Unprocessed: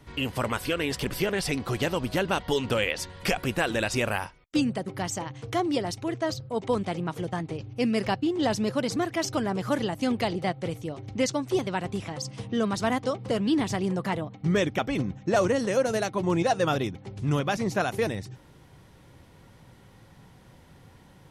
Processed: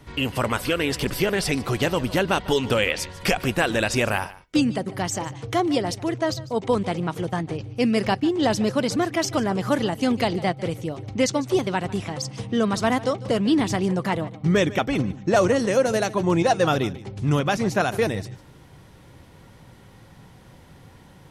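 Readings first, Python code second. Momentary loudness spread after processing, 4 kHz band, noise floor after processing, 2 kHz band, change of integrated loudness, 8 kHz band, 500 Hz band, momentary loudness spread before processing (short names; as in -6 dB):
7 LU, +4.5 dB, -49 dBFS, +4.5 dB, +4.5 dB, +4.5 dB, +4.5 dB, 7 LU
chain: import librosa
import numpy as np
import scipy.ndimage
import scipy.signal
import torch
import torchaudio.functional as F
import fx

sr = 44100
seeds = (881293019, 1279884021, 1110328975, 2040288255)

y = x + 10.0 ** (-18.5 / 20.0) * np.pad(x, (int(149 * sr / 1000.0), 0))[:len(x)]
y = F.gain(torch.from_numpy(y), 4.5).numpy()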